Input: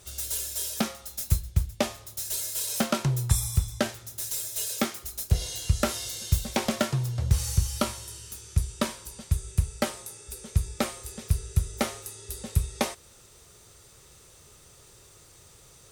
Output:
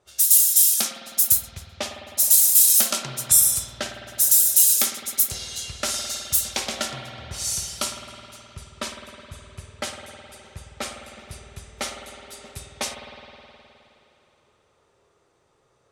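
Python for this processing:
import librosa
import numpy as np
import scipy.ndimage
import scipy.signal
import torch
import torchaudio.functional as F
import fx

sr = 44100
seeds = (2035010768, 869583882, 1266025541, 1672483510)

y = fx.riaa(x, sr, side='recording')
y = fx.env_lowpass(y, sr, base_hz=850.0, full_db=-15.5)
y = fx.high_shelf(y, sr, hz=3800.0, db=7.0)
y = fx.rev_spring(y, sr, rt60_s=3.2, pass_ms=(52,), chirp_ms=35, drr_db=4.0)
y = y * 10.0 ** (-3.0 / 20.0)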